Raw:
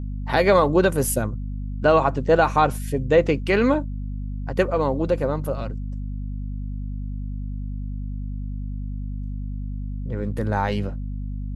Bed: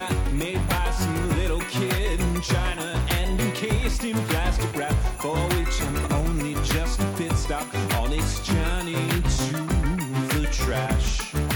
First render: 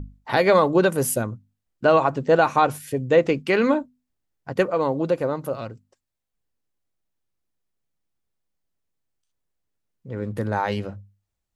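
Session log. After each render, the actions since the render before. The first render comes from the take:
mains-hum notches 50/100/150/200/250 Hz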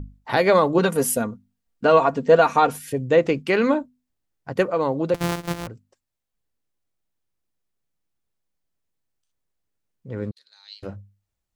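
0:00.78–0:02.93: comb filter 4.3 ms, depth 63%
0:05.14–0:05.67: samples sorted by size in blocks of 256 samples
0:10.31–0:10.83: four-pole ladder band-pass 4,300 Hz, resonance 85%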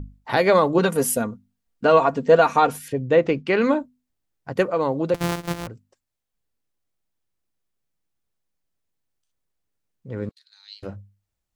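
0:02.88–0:03.61: Bessel low-pass filter 4,200 Hz
0:10.29–0:10.77: high-pass filter 1,300 Hz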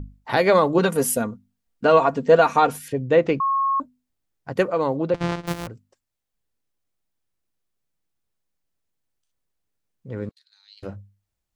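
0:03.40–0:03.80: beep over 1,090 Hz −18 dBFS
0:04.97–0:05.47: high-frequency loss of the air 120 metres
0:10.10–0:10.77: fade out, to −9 dB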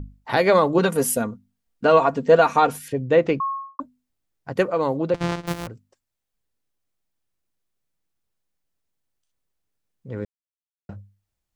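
0:03.31–0:03.79: fade out and dull
0:04.83–0:05.44: high-shelf EQ 7,500 Hz +7.5 dB
0:10.25–0:10.89: silence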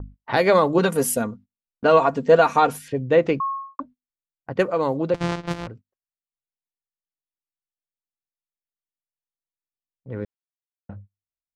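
noise gate −43 dBFS, range −24 dB
low-pass that shuts in the quiet parts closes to 1,800 Hz, open at −17.5 dBFS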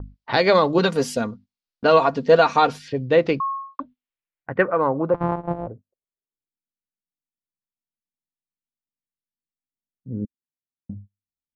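low-pass filter sweep 4,700 Hz → 240 Hz, 0:03.53–0:06.79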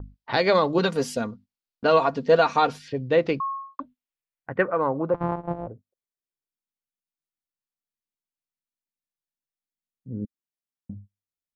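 level −3.5 dB

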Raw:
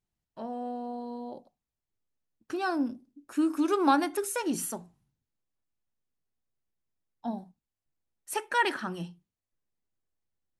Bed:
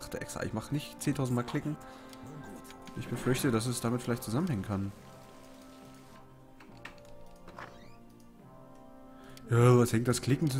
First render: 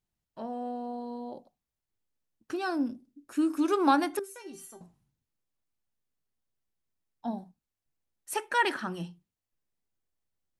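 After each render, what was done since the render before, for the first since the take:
0:02.56–0:03.61: parametric band 960 Hz −3.5 dB 1.4 octaves
0:04.19–0:04.81: tuned comb filter 390 Hz, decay 0.23 s, mix 90%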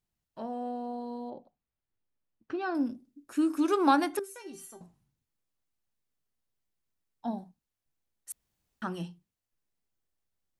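0:01.30–0:02.75: high-frequency loss of the air 260 metres
0:08.32–0:08.82: fill with room tone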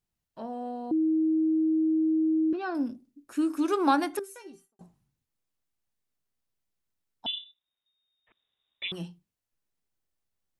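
0:00.91–0:02.53: beep over 317 Hz −21.5 dBFS
0:04.35–0:04.79: fade out and dull
0:07.26–0:08.92: voice inversion scrambler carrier 3,700 Hz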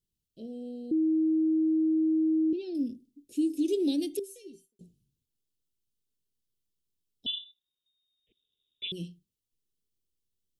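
Chebyshev band-stop filter 450–3,000 Hz, order 3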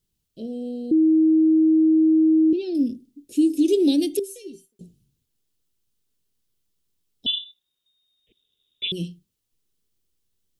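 level +9 dB

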